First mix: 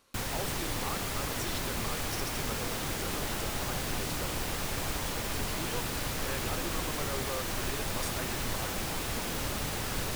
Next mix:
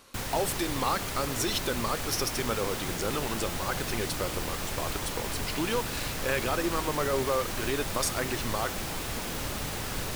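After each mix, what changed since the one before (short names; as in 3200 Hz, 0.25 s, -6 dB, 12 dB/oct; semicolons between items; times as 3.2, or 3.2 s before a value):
speech +11.0 dB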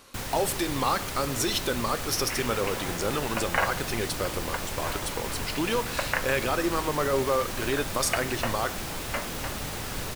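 speech: send +10.5 dB; second sound: unmuted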